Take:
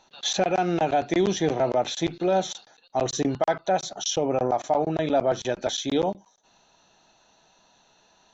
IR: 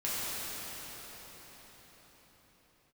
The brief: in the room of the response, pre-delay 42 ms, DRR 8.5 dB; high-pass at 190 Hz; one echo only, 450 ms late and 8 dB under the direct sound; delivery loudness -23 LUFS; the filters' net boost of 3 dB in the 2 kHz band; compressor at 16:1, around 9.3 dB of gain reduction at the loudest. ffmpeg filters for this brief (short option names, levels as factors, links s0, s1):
-filter_complex "[0:a]highpass=190,equalizer=f=2000:t=o:g=4,acompressor=threshold=0.0447:ratio=16,aecho=1:1:450:0.398,asplit=2[s0][s1];[1:a]atrim=start_sample=2205,adelay=42[s2];[s1][s2]afir=irnorm=-1:irlink=0,volume=0.141[s3];[s0][s3]amix=inputs=2:normalize=0,volume=2.66"